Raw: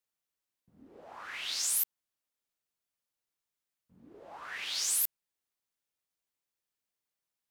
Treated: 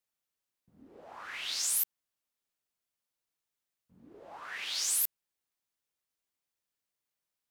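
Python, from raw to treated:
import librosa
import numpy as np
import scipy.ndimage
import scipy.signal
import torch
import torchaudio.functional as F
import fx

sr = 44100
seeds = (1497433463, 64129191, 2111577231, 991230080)

y = fx.highpass(x, sr, hz=130.0, slope=6, at=(4.4, 4.94))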